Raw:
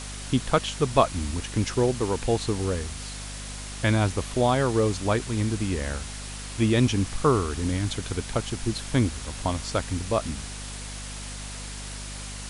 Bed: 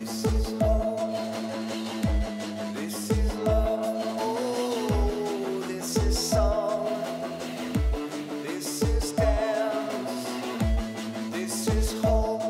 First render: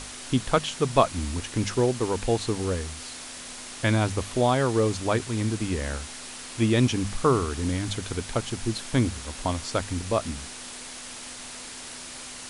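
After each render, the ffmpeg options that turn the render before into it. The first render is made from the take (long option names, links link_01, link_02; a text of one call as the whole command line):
ffmpeg -i in.wav -af "bandreject=frequency=50:width_type=h:width=6,bandreject=frequency=100:width_type=h:width=6,bandreject=frequency=150:width_type=h:width=6,bandreject=frequency=200:width_type=h:width=6" out.wav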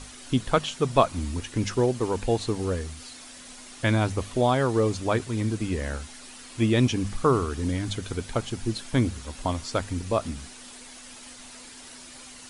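ffmpeg -i in.wav -af "afftdn=noise_reduction=8:noise_floor=-40" out.wav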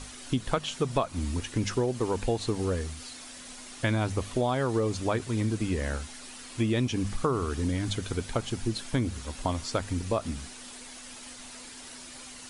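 ffmpeg -i in.wav -af "acompressor=threshold=-23dB:ratio=6" out.wav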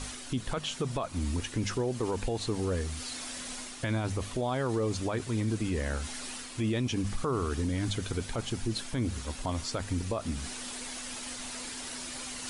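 ffmpeg -i in.wav -af "alimiter=limit=-22.5dB:level=0:latency=1:release=28,areverse,acompressor=mode=upward:threshold=-32dB:ratio=2.5,areverse" out.wav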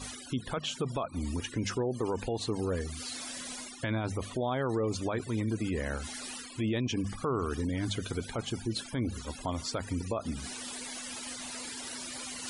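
ffmpeg -i in.wav -af "afftfilt=real='re*gte(hypot(re,im),0.00708)':imag='im*gte(hypot(re,im),0.00708)':win_size=1024:overlap=0.75,highpass=frequency=96:poles=1" out.wav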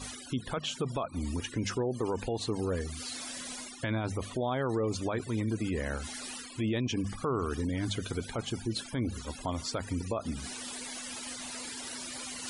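ffmpeg -i in.wav -af anull out.wav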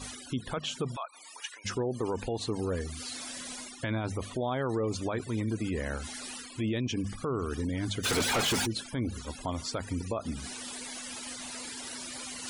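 ffmpeg -i in.wav -filter_complex "[0:a]asplit=3[link_01][link_02][link_03];[link_01]afade=type=out:start_time=0.95:duration=0.02[link_04];[link_02]highpass=frequency=800:width=0.5412,highpass=frequency=800:width=1.3066,afade=type=in:start_time=0.95:duration=0.02,afade=type=out:start_time=1.64:duration=0.02[link_05];[link_03]afade=type=in:start_time=1.64:duration=0.02[link_06];[link_04][link_05][link_06]amix=inputs=3:normalize=0,asettb=1/sr,asplit=3[link_07][link_08][link_09];[link_07]atrim=end=6.724[link_10];[link_08]atrim=start=6.72:end=7.53,asetpts=PTS-STARTPTS,afade=type=in:duration=0.004:curve=qsin,afade=type=out:start_time=0.806:duration=0.004:curve=qsin,equalizer=frequency=920:width=1.5:gain=-5[link_11];[link_09]atrim=start=7.526[link_12];[link_10][link_11]acrossfade=duration=0.004:curve1=hsin:curve2=qsin[link_13];[link_13][link_12]acrossfade=duration=0.004:curve1=qsin:curve2=hsin,asplit=3[link_14][link_15][link_16];[link_14]afade=type=out:start_time=8.03:duration=0.02[link_17];[link_15]asplit=2[link_18][link_19];[link_19]highpass=frequency=720:poles=1,volume=37dB,asoftclip=type=tanh:threshold=-20.5dB[link_20];[link_18][link_20]amix=inputs=2:normalize=0,lowpass=frequency=6100:poles=1,volume=-6dB,afade=type=in:start_time=8.03:duration=0.02,afade=type=out:start_time=8.65:duration=0.02[link_21];[link_16]afade=type=in:start_time=8.65:duration=0.02[link_22];[link_17][link_21][link_22]amix=inputs=3:normalize=0" out.wav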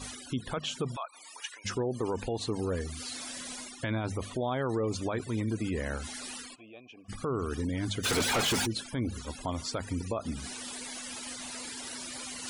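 ffmpeg -i in.wav -filter_complex "[0:a]asplit=3[link_01][link_02][link_03];[link_01]afade=type=out:start_time=6.54:duration=0.02[link_04];[link_02]asplit=3[link_05][link_06][link_07];[link_05]bandpass=frequency=730:width_type=q:width=8,volume=0dB[link_08];[link_06]bandpass=frequency=1090:width_type=q:width=8,volume=-6dB[link_09];[link_07]bandpass=frequency=2440:width_type=q:width=8,volume=-9dB[link_10];[link_08][link_09][link_10]amix=inputs=3:normalize=0,afade=type=in:start_time=6.54:duration=0.02,afade=type=out:start_time=7.08:duration=0.02[link_11];[link_03]afade=type=in:start_time=7.08:duration=0.02[link_12];[link_04][link_11][link_12]amix=inputs=3:normalize=0" out.wav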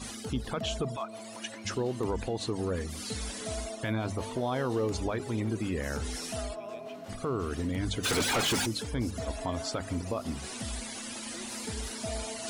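ffmpeg -i in.wav -i bed.wav -filter_complex "[1:a]volume=-14dB[link_01];[0:a][link_01]amix=inputs=2:normalize=0" out.wav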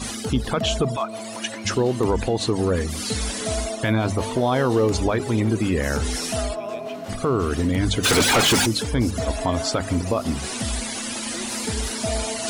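ffmpeg -i in.wav -af "volume=10.5dB" out.wav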